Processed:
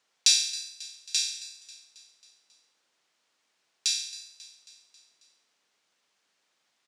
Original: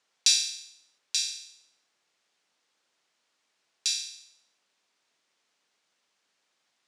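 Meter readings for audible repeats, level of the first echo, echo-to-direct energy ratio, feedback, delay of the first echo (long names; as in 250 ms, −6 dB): 4, −17.0 dB, −15.5 dB, 57%, 271 ms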